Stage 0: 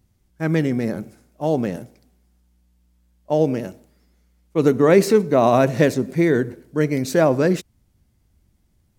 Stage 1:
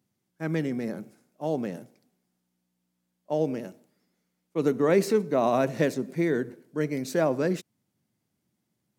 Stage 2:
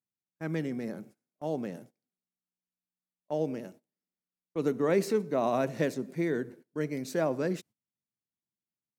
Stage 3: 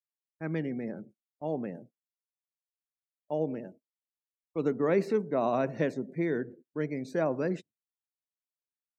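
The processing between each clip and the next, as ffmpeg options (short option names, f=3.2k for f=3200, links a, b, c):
-af "highpass=f=140:w=0.5412,highpass=f=140:w=1.3066,volume=-8dB"
-af "agate=range=-20dB:threshold=-47dB:ratio=16:detection=peak,volume=-4.5dB"
-filter_complex "[0:a]afftdn=nr=25:nf=-51,acrossover=split=3500[a][b];[b]acompressor=threshold=-56dB:ratio=4:attack=1:release=60[c];[a][c]amix=inputs=2:normalize=0"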